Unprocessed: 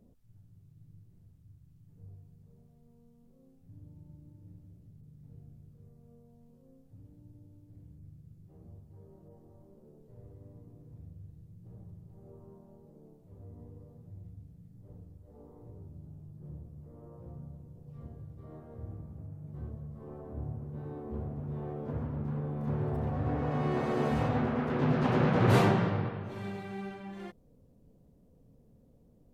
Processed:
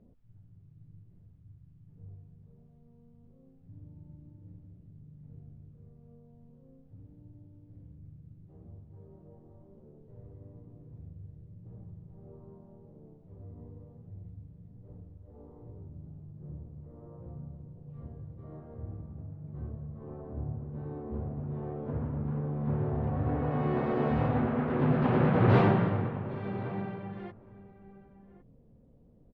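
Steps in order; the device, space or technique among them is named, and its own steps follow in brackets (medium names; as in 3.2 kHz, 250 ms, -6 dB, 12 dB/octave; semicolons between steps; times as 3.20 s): shout across a valley (distance through air 340 m; echo from a far wall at 190 m, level -15 dB); trim +2 dB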